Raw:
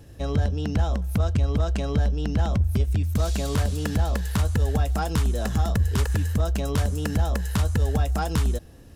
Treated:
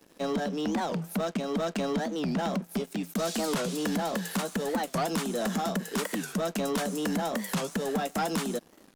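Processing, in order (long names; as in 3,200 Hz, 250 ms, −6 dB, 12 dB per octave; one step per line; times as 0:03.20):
Butterworth high-pass 170 Hz 96 dB per octave
leveller curve on the samples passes 3
wow of a warped record 45 rpm, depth 250 cents
level −8.5 dB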